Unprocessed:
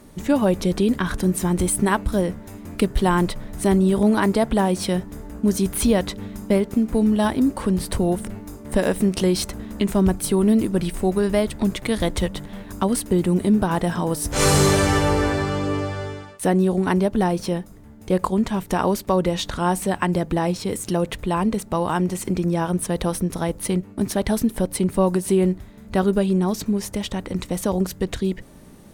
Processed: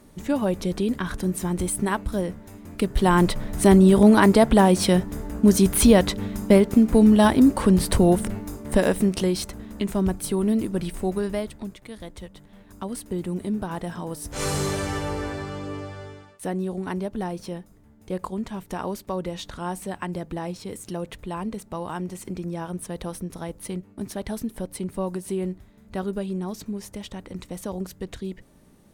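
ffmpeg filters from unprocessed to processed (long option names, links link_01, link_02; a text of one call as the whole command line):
ffmpeg -i in.wav -af "volume=11dB,afade=type=in:start_time=2.78:duration=0.63:silence=0.375837,afade=type=out:start_time=8.23:duration=1.17:silence=0.375837,afade=type=out:start_time=11.14:duration=0.62:silence=0.251189,afade=type=in:start_time=12.3:duration=0.88:silence=0.421697" out.wav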